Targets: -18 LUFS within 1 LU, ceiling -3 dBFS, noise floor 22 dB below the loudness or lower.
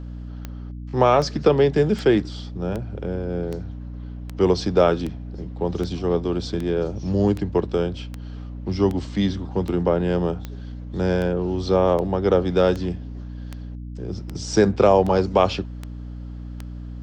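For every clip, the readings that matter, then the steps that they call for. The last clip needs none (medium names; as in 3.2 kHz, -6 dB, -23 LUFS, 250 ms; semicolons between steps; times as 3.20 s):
clicks found 22; hum 60 Hz; highest harmonic 300 Hz; hum level -31 dBFS; loudness -22.0 LUFS; peak level -3.5 dBFS; loudness target -18.0 LUFS
-> de-click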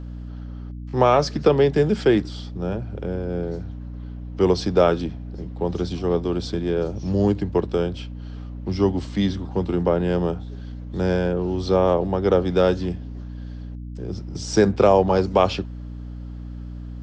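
clicks found 0; hum 60 Hz; highest harmonic 300 Hz; hum level -31 dBFS
-> de-hum 60 Hz, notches 5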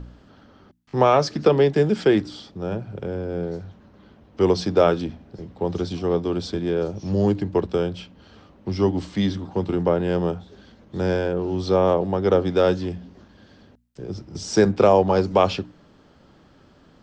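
hum not found; loudness -22.0 LUFS; peak level -3.5 dBFS; loudness target -18.0 LUFS
-> trim +4 dB; peak limiter -3 dBFS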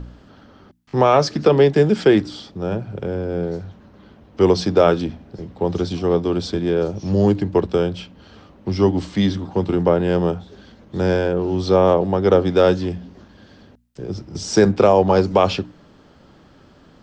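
loudness -18.5 LUFS; peak level -3.0 dBFS; noise floor -50 dBFS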